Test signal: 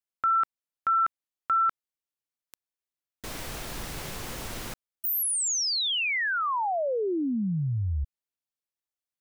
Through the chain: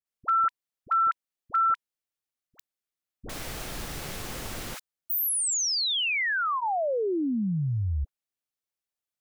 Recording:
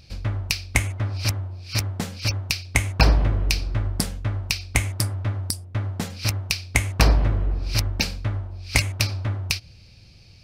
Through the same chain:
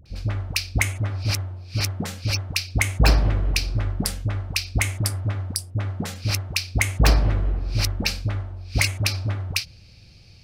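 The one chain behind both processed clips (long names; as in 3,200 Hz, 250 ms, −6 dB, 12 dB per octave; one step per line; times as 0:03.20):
notch filter 980 Hz, Q 17
in parallel at −10 dB: wrap-around overflow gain 6 dB
on the sum: all-pass dispersion highs, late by 58 ms, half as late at 710 Hz
level −2 dB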